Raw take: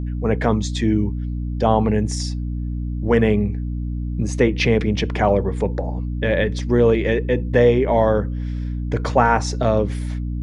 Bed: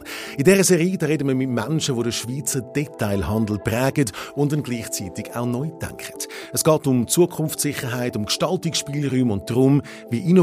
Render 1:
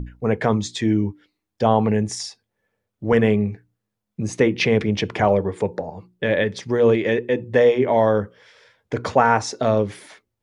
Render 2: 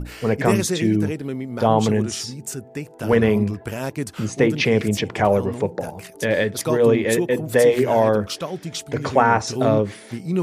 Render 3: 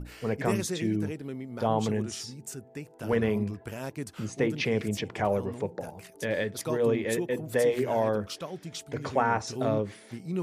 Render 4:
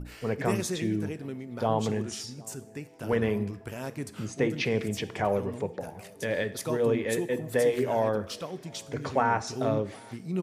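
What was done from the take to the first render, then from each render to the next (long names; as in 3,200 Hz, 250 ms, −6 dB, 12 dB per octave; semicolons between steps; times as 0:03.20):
mains-hum notches 60/120/180/240/300/360 Hz
mix in bed −7.5 dB
level −9.5 dB
slap from a distant wall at 130 metres, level −25 dB; dense smooth reverb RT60 0.75 s, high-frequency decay 0.95×, DRR 13.5 dB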